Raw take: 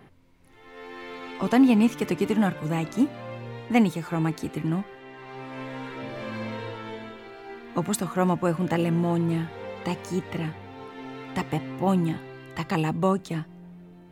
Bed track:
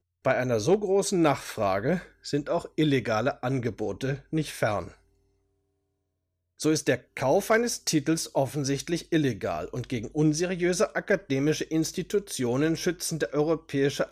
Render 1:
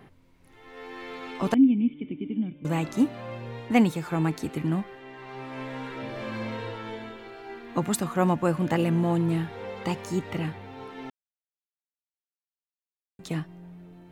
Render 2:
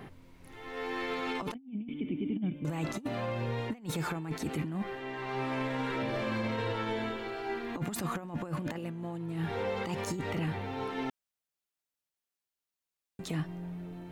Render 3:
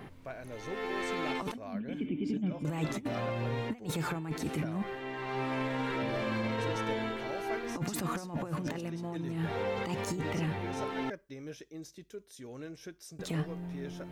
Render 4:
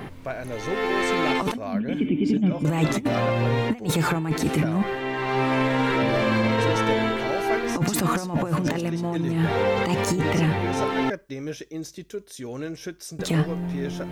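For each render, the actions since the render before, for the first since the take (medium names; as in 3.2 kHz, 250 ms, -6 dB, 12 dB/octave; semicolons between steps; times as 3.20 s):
1.54–2.65 s: cascade formant filter i; 11.10–13.19 s: mute
compressor with a negative ratio -30 dBFS, ratio -0.5; peak limiter -25 dBFS, peak gain reduction 9.5 dB
add bed track -19 dB
trim +11.5 dB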